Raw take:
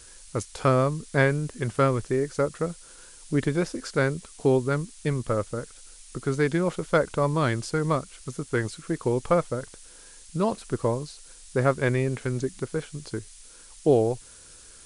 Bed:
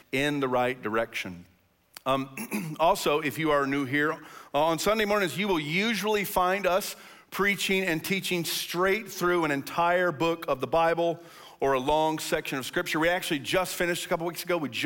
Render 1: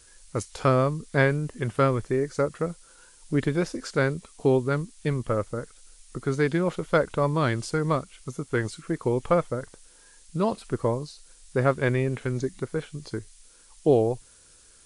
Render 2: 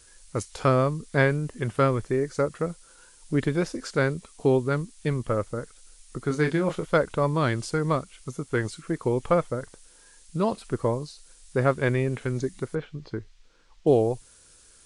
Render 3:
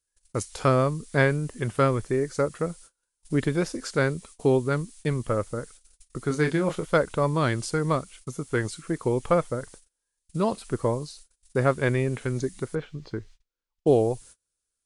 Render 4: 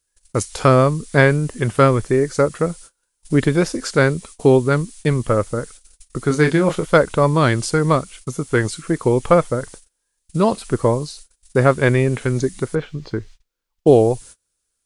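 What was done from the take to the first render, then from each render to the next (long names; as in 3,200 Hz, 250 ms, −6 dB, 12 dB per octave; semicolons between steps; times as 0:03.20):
noise reduction from a noise print 6 dB
0:06.28–0:06.85: double-tracking delay 26 ms −7.5 dB; 0:12.75–0:13.87: high-frequency loss of the air 200 metres
noise gate −47 dBFS, range −31 dB; high-shelf EQ 8,700 Hz +7.5 dB
level +8.5 dB; brickwall limiter −1 dBFS, peak gain reduction 1.5 dB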